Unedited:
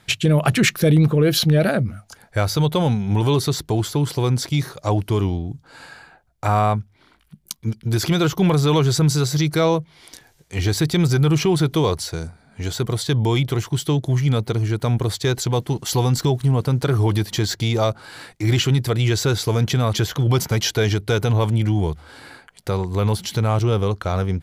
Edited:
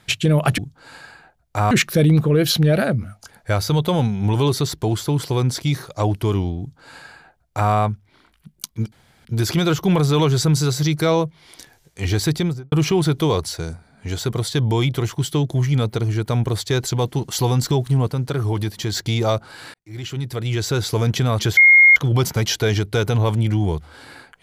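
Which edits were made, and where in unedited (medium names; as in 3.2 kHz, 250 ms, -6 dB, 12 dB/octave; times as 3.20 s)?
5.46–6.59 s: copy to 0.58 s
7.79 s: insert room tone 0.33 s
10.84–11.26 s: studio fade out
16.62–17.46 s: gain -3.5 dB
18.28–19.49 s: fade in
20.11 s: add tone 2.14 kHz -6.5 dBFS 0.39 s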